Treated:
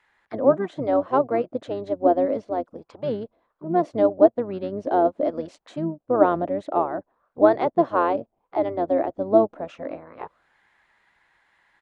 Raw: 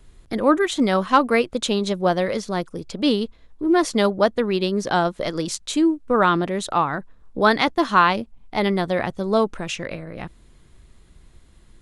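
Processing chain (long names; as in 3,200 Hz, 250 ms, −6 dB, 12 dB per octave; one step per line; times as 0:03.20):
envelope filter 630–2,000 Hz, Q 4.4, down, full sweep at −24.5 dBFS
pitch-shifted copies added −12 semitones −6 dB, −7 semitones −18 dB
speech leveller within 4 dB 2 s
level +4.5 dB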